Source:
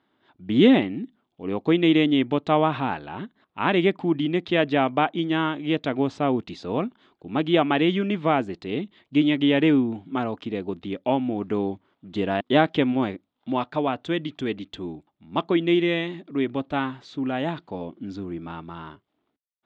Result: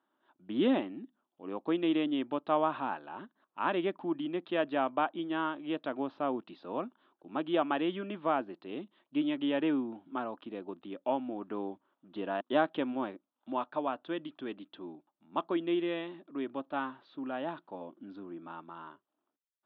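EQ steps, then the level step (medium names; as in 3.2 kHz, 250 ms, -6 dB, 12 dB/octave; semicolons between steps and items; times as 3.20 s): distance through air 130 m; cabinet simulation 430–4200 Hz, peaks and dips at 440 Hz -9 dB, 740 Hz -5 dB, 2.1 kHz -10 dB; treble shelf 2.2 kHz -10.5 dB; -2.0 dB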